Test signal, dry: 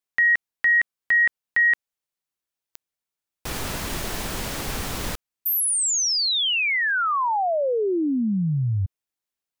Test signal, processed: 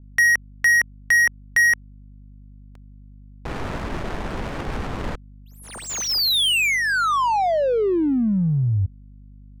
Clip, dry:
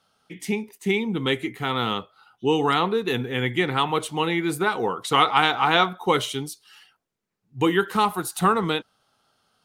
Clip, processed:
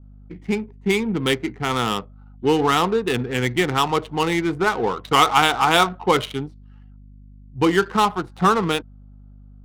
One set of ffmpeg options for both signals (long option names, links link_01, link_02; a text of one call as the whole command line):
ffmpeg -i in.wav -af "adynamicequalizer=threshold=0.0224:dfrequency=1900:dqfactor=3.7:tfrequency=1900:tqfactor=3.7:attack=5:release=100:ratio=0.375:range=3:mode=cutabove:tftype=bell,aeval=exprs='val(0)+0.00501*(sin(2*PI*50*n/s)+sin(2*PI*2*50*n/s)/2+sin(2*PI*3*50*n/s)/3+sin(2*PI*4*50*n/s)/4+sin(2*PI*5*50*n/s)/5)':channel_layout=same,adynamicsmooth=sensitivity=3.5:basefreq=600,volume=3dB" out.wav